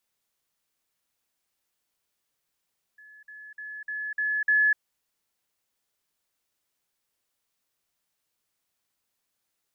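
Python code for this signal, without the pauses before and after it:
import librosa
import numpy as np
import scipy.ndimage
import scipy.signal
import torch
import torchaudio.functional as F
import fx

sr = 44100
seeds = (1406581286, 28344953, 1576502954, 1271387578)

y = fx.level_ladder(sr, hz=1710.0, from_db=-48.0, step_db=6.0, steps=6, dwell_s=0.25, gap_s=0.05)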